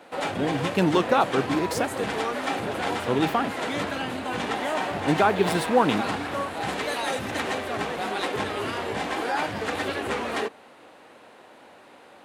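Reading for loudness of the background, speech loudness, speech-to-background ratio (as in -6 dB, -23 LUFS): -28.5 LUFS, -25.0 LUFS, 3.5 dB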